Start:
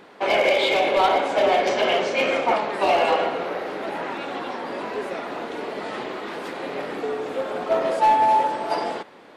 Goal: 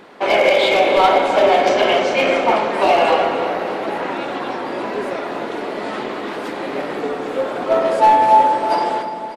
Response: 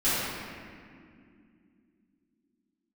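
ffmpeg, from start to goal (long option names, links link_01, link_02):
-filter_complex "[0:a]aecho=1:1:300|600|900|1200|1500|1800:0.224|0.13|0.0753|0.0437|0.0253|0.0147,asplit=2[link_01][link_02];[1:a]atrim=start_sample=2205,lowpass=2000[link_03];[link_02][link_03]afir=irnorm=-1:irlink=0,volume=-21dB[link_04];[link_01][link_04]amix=inputs=2:normalize=0,volume=4dB"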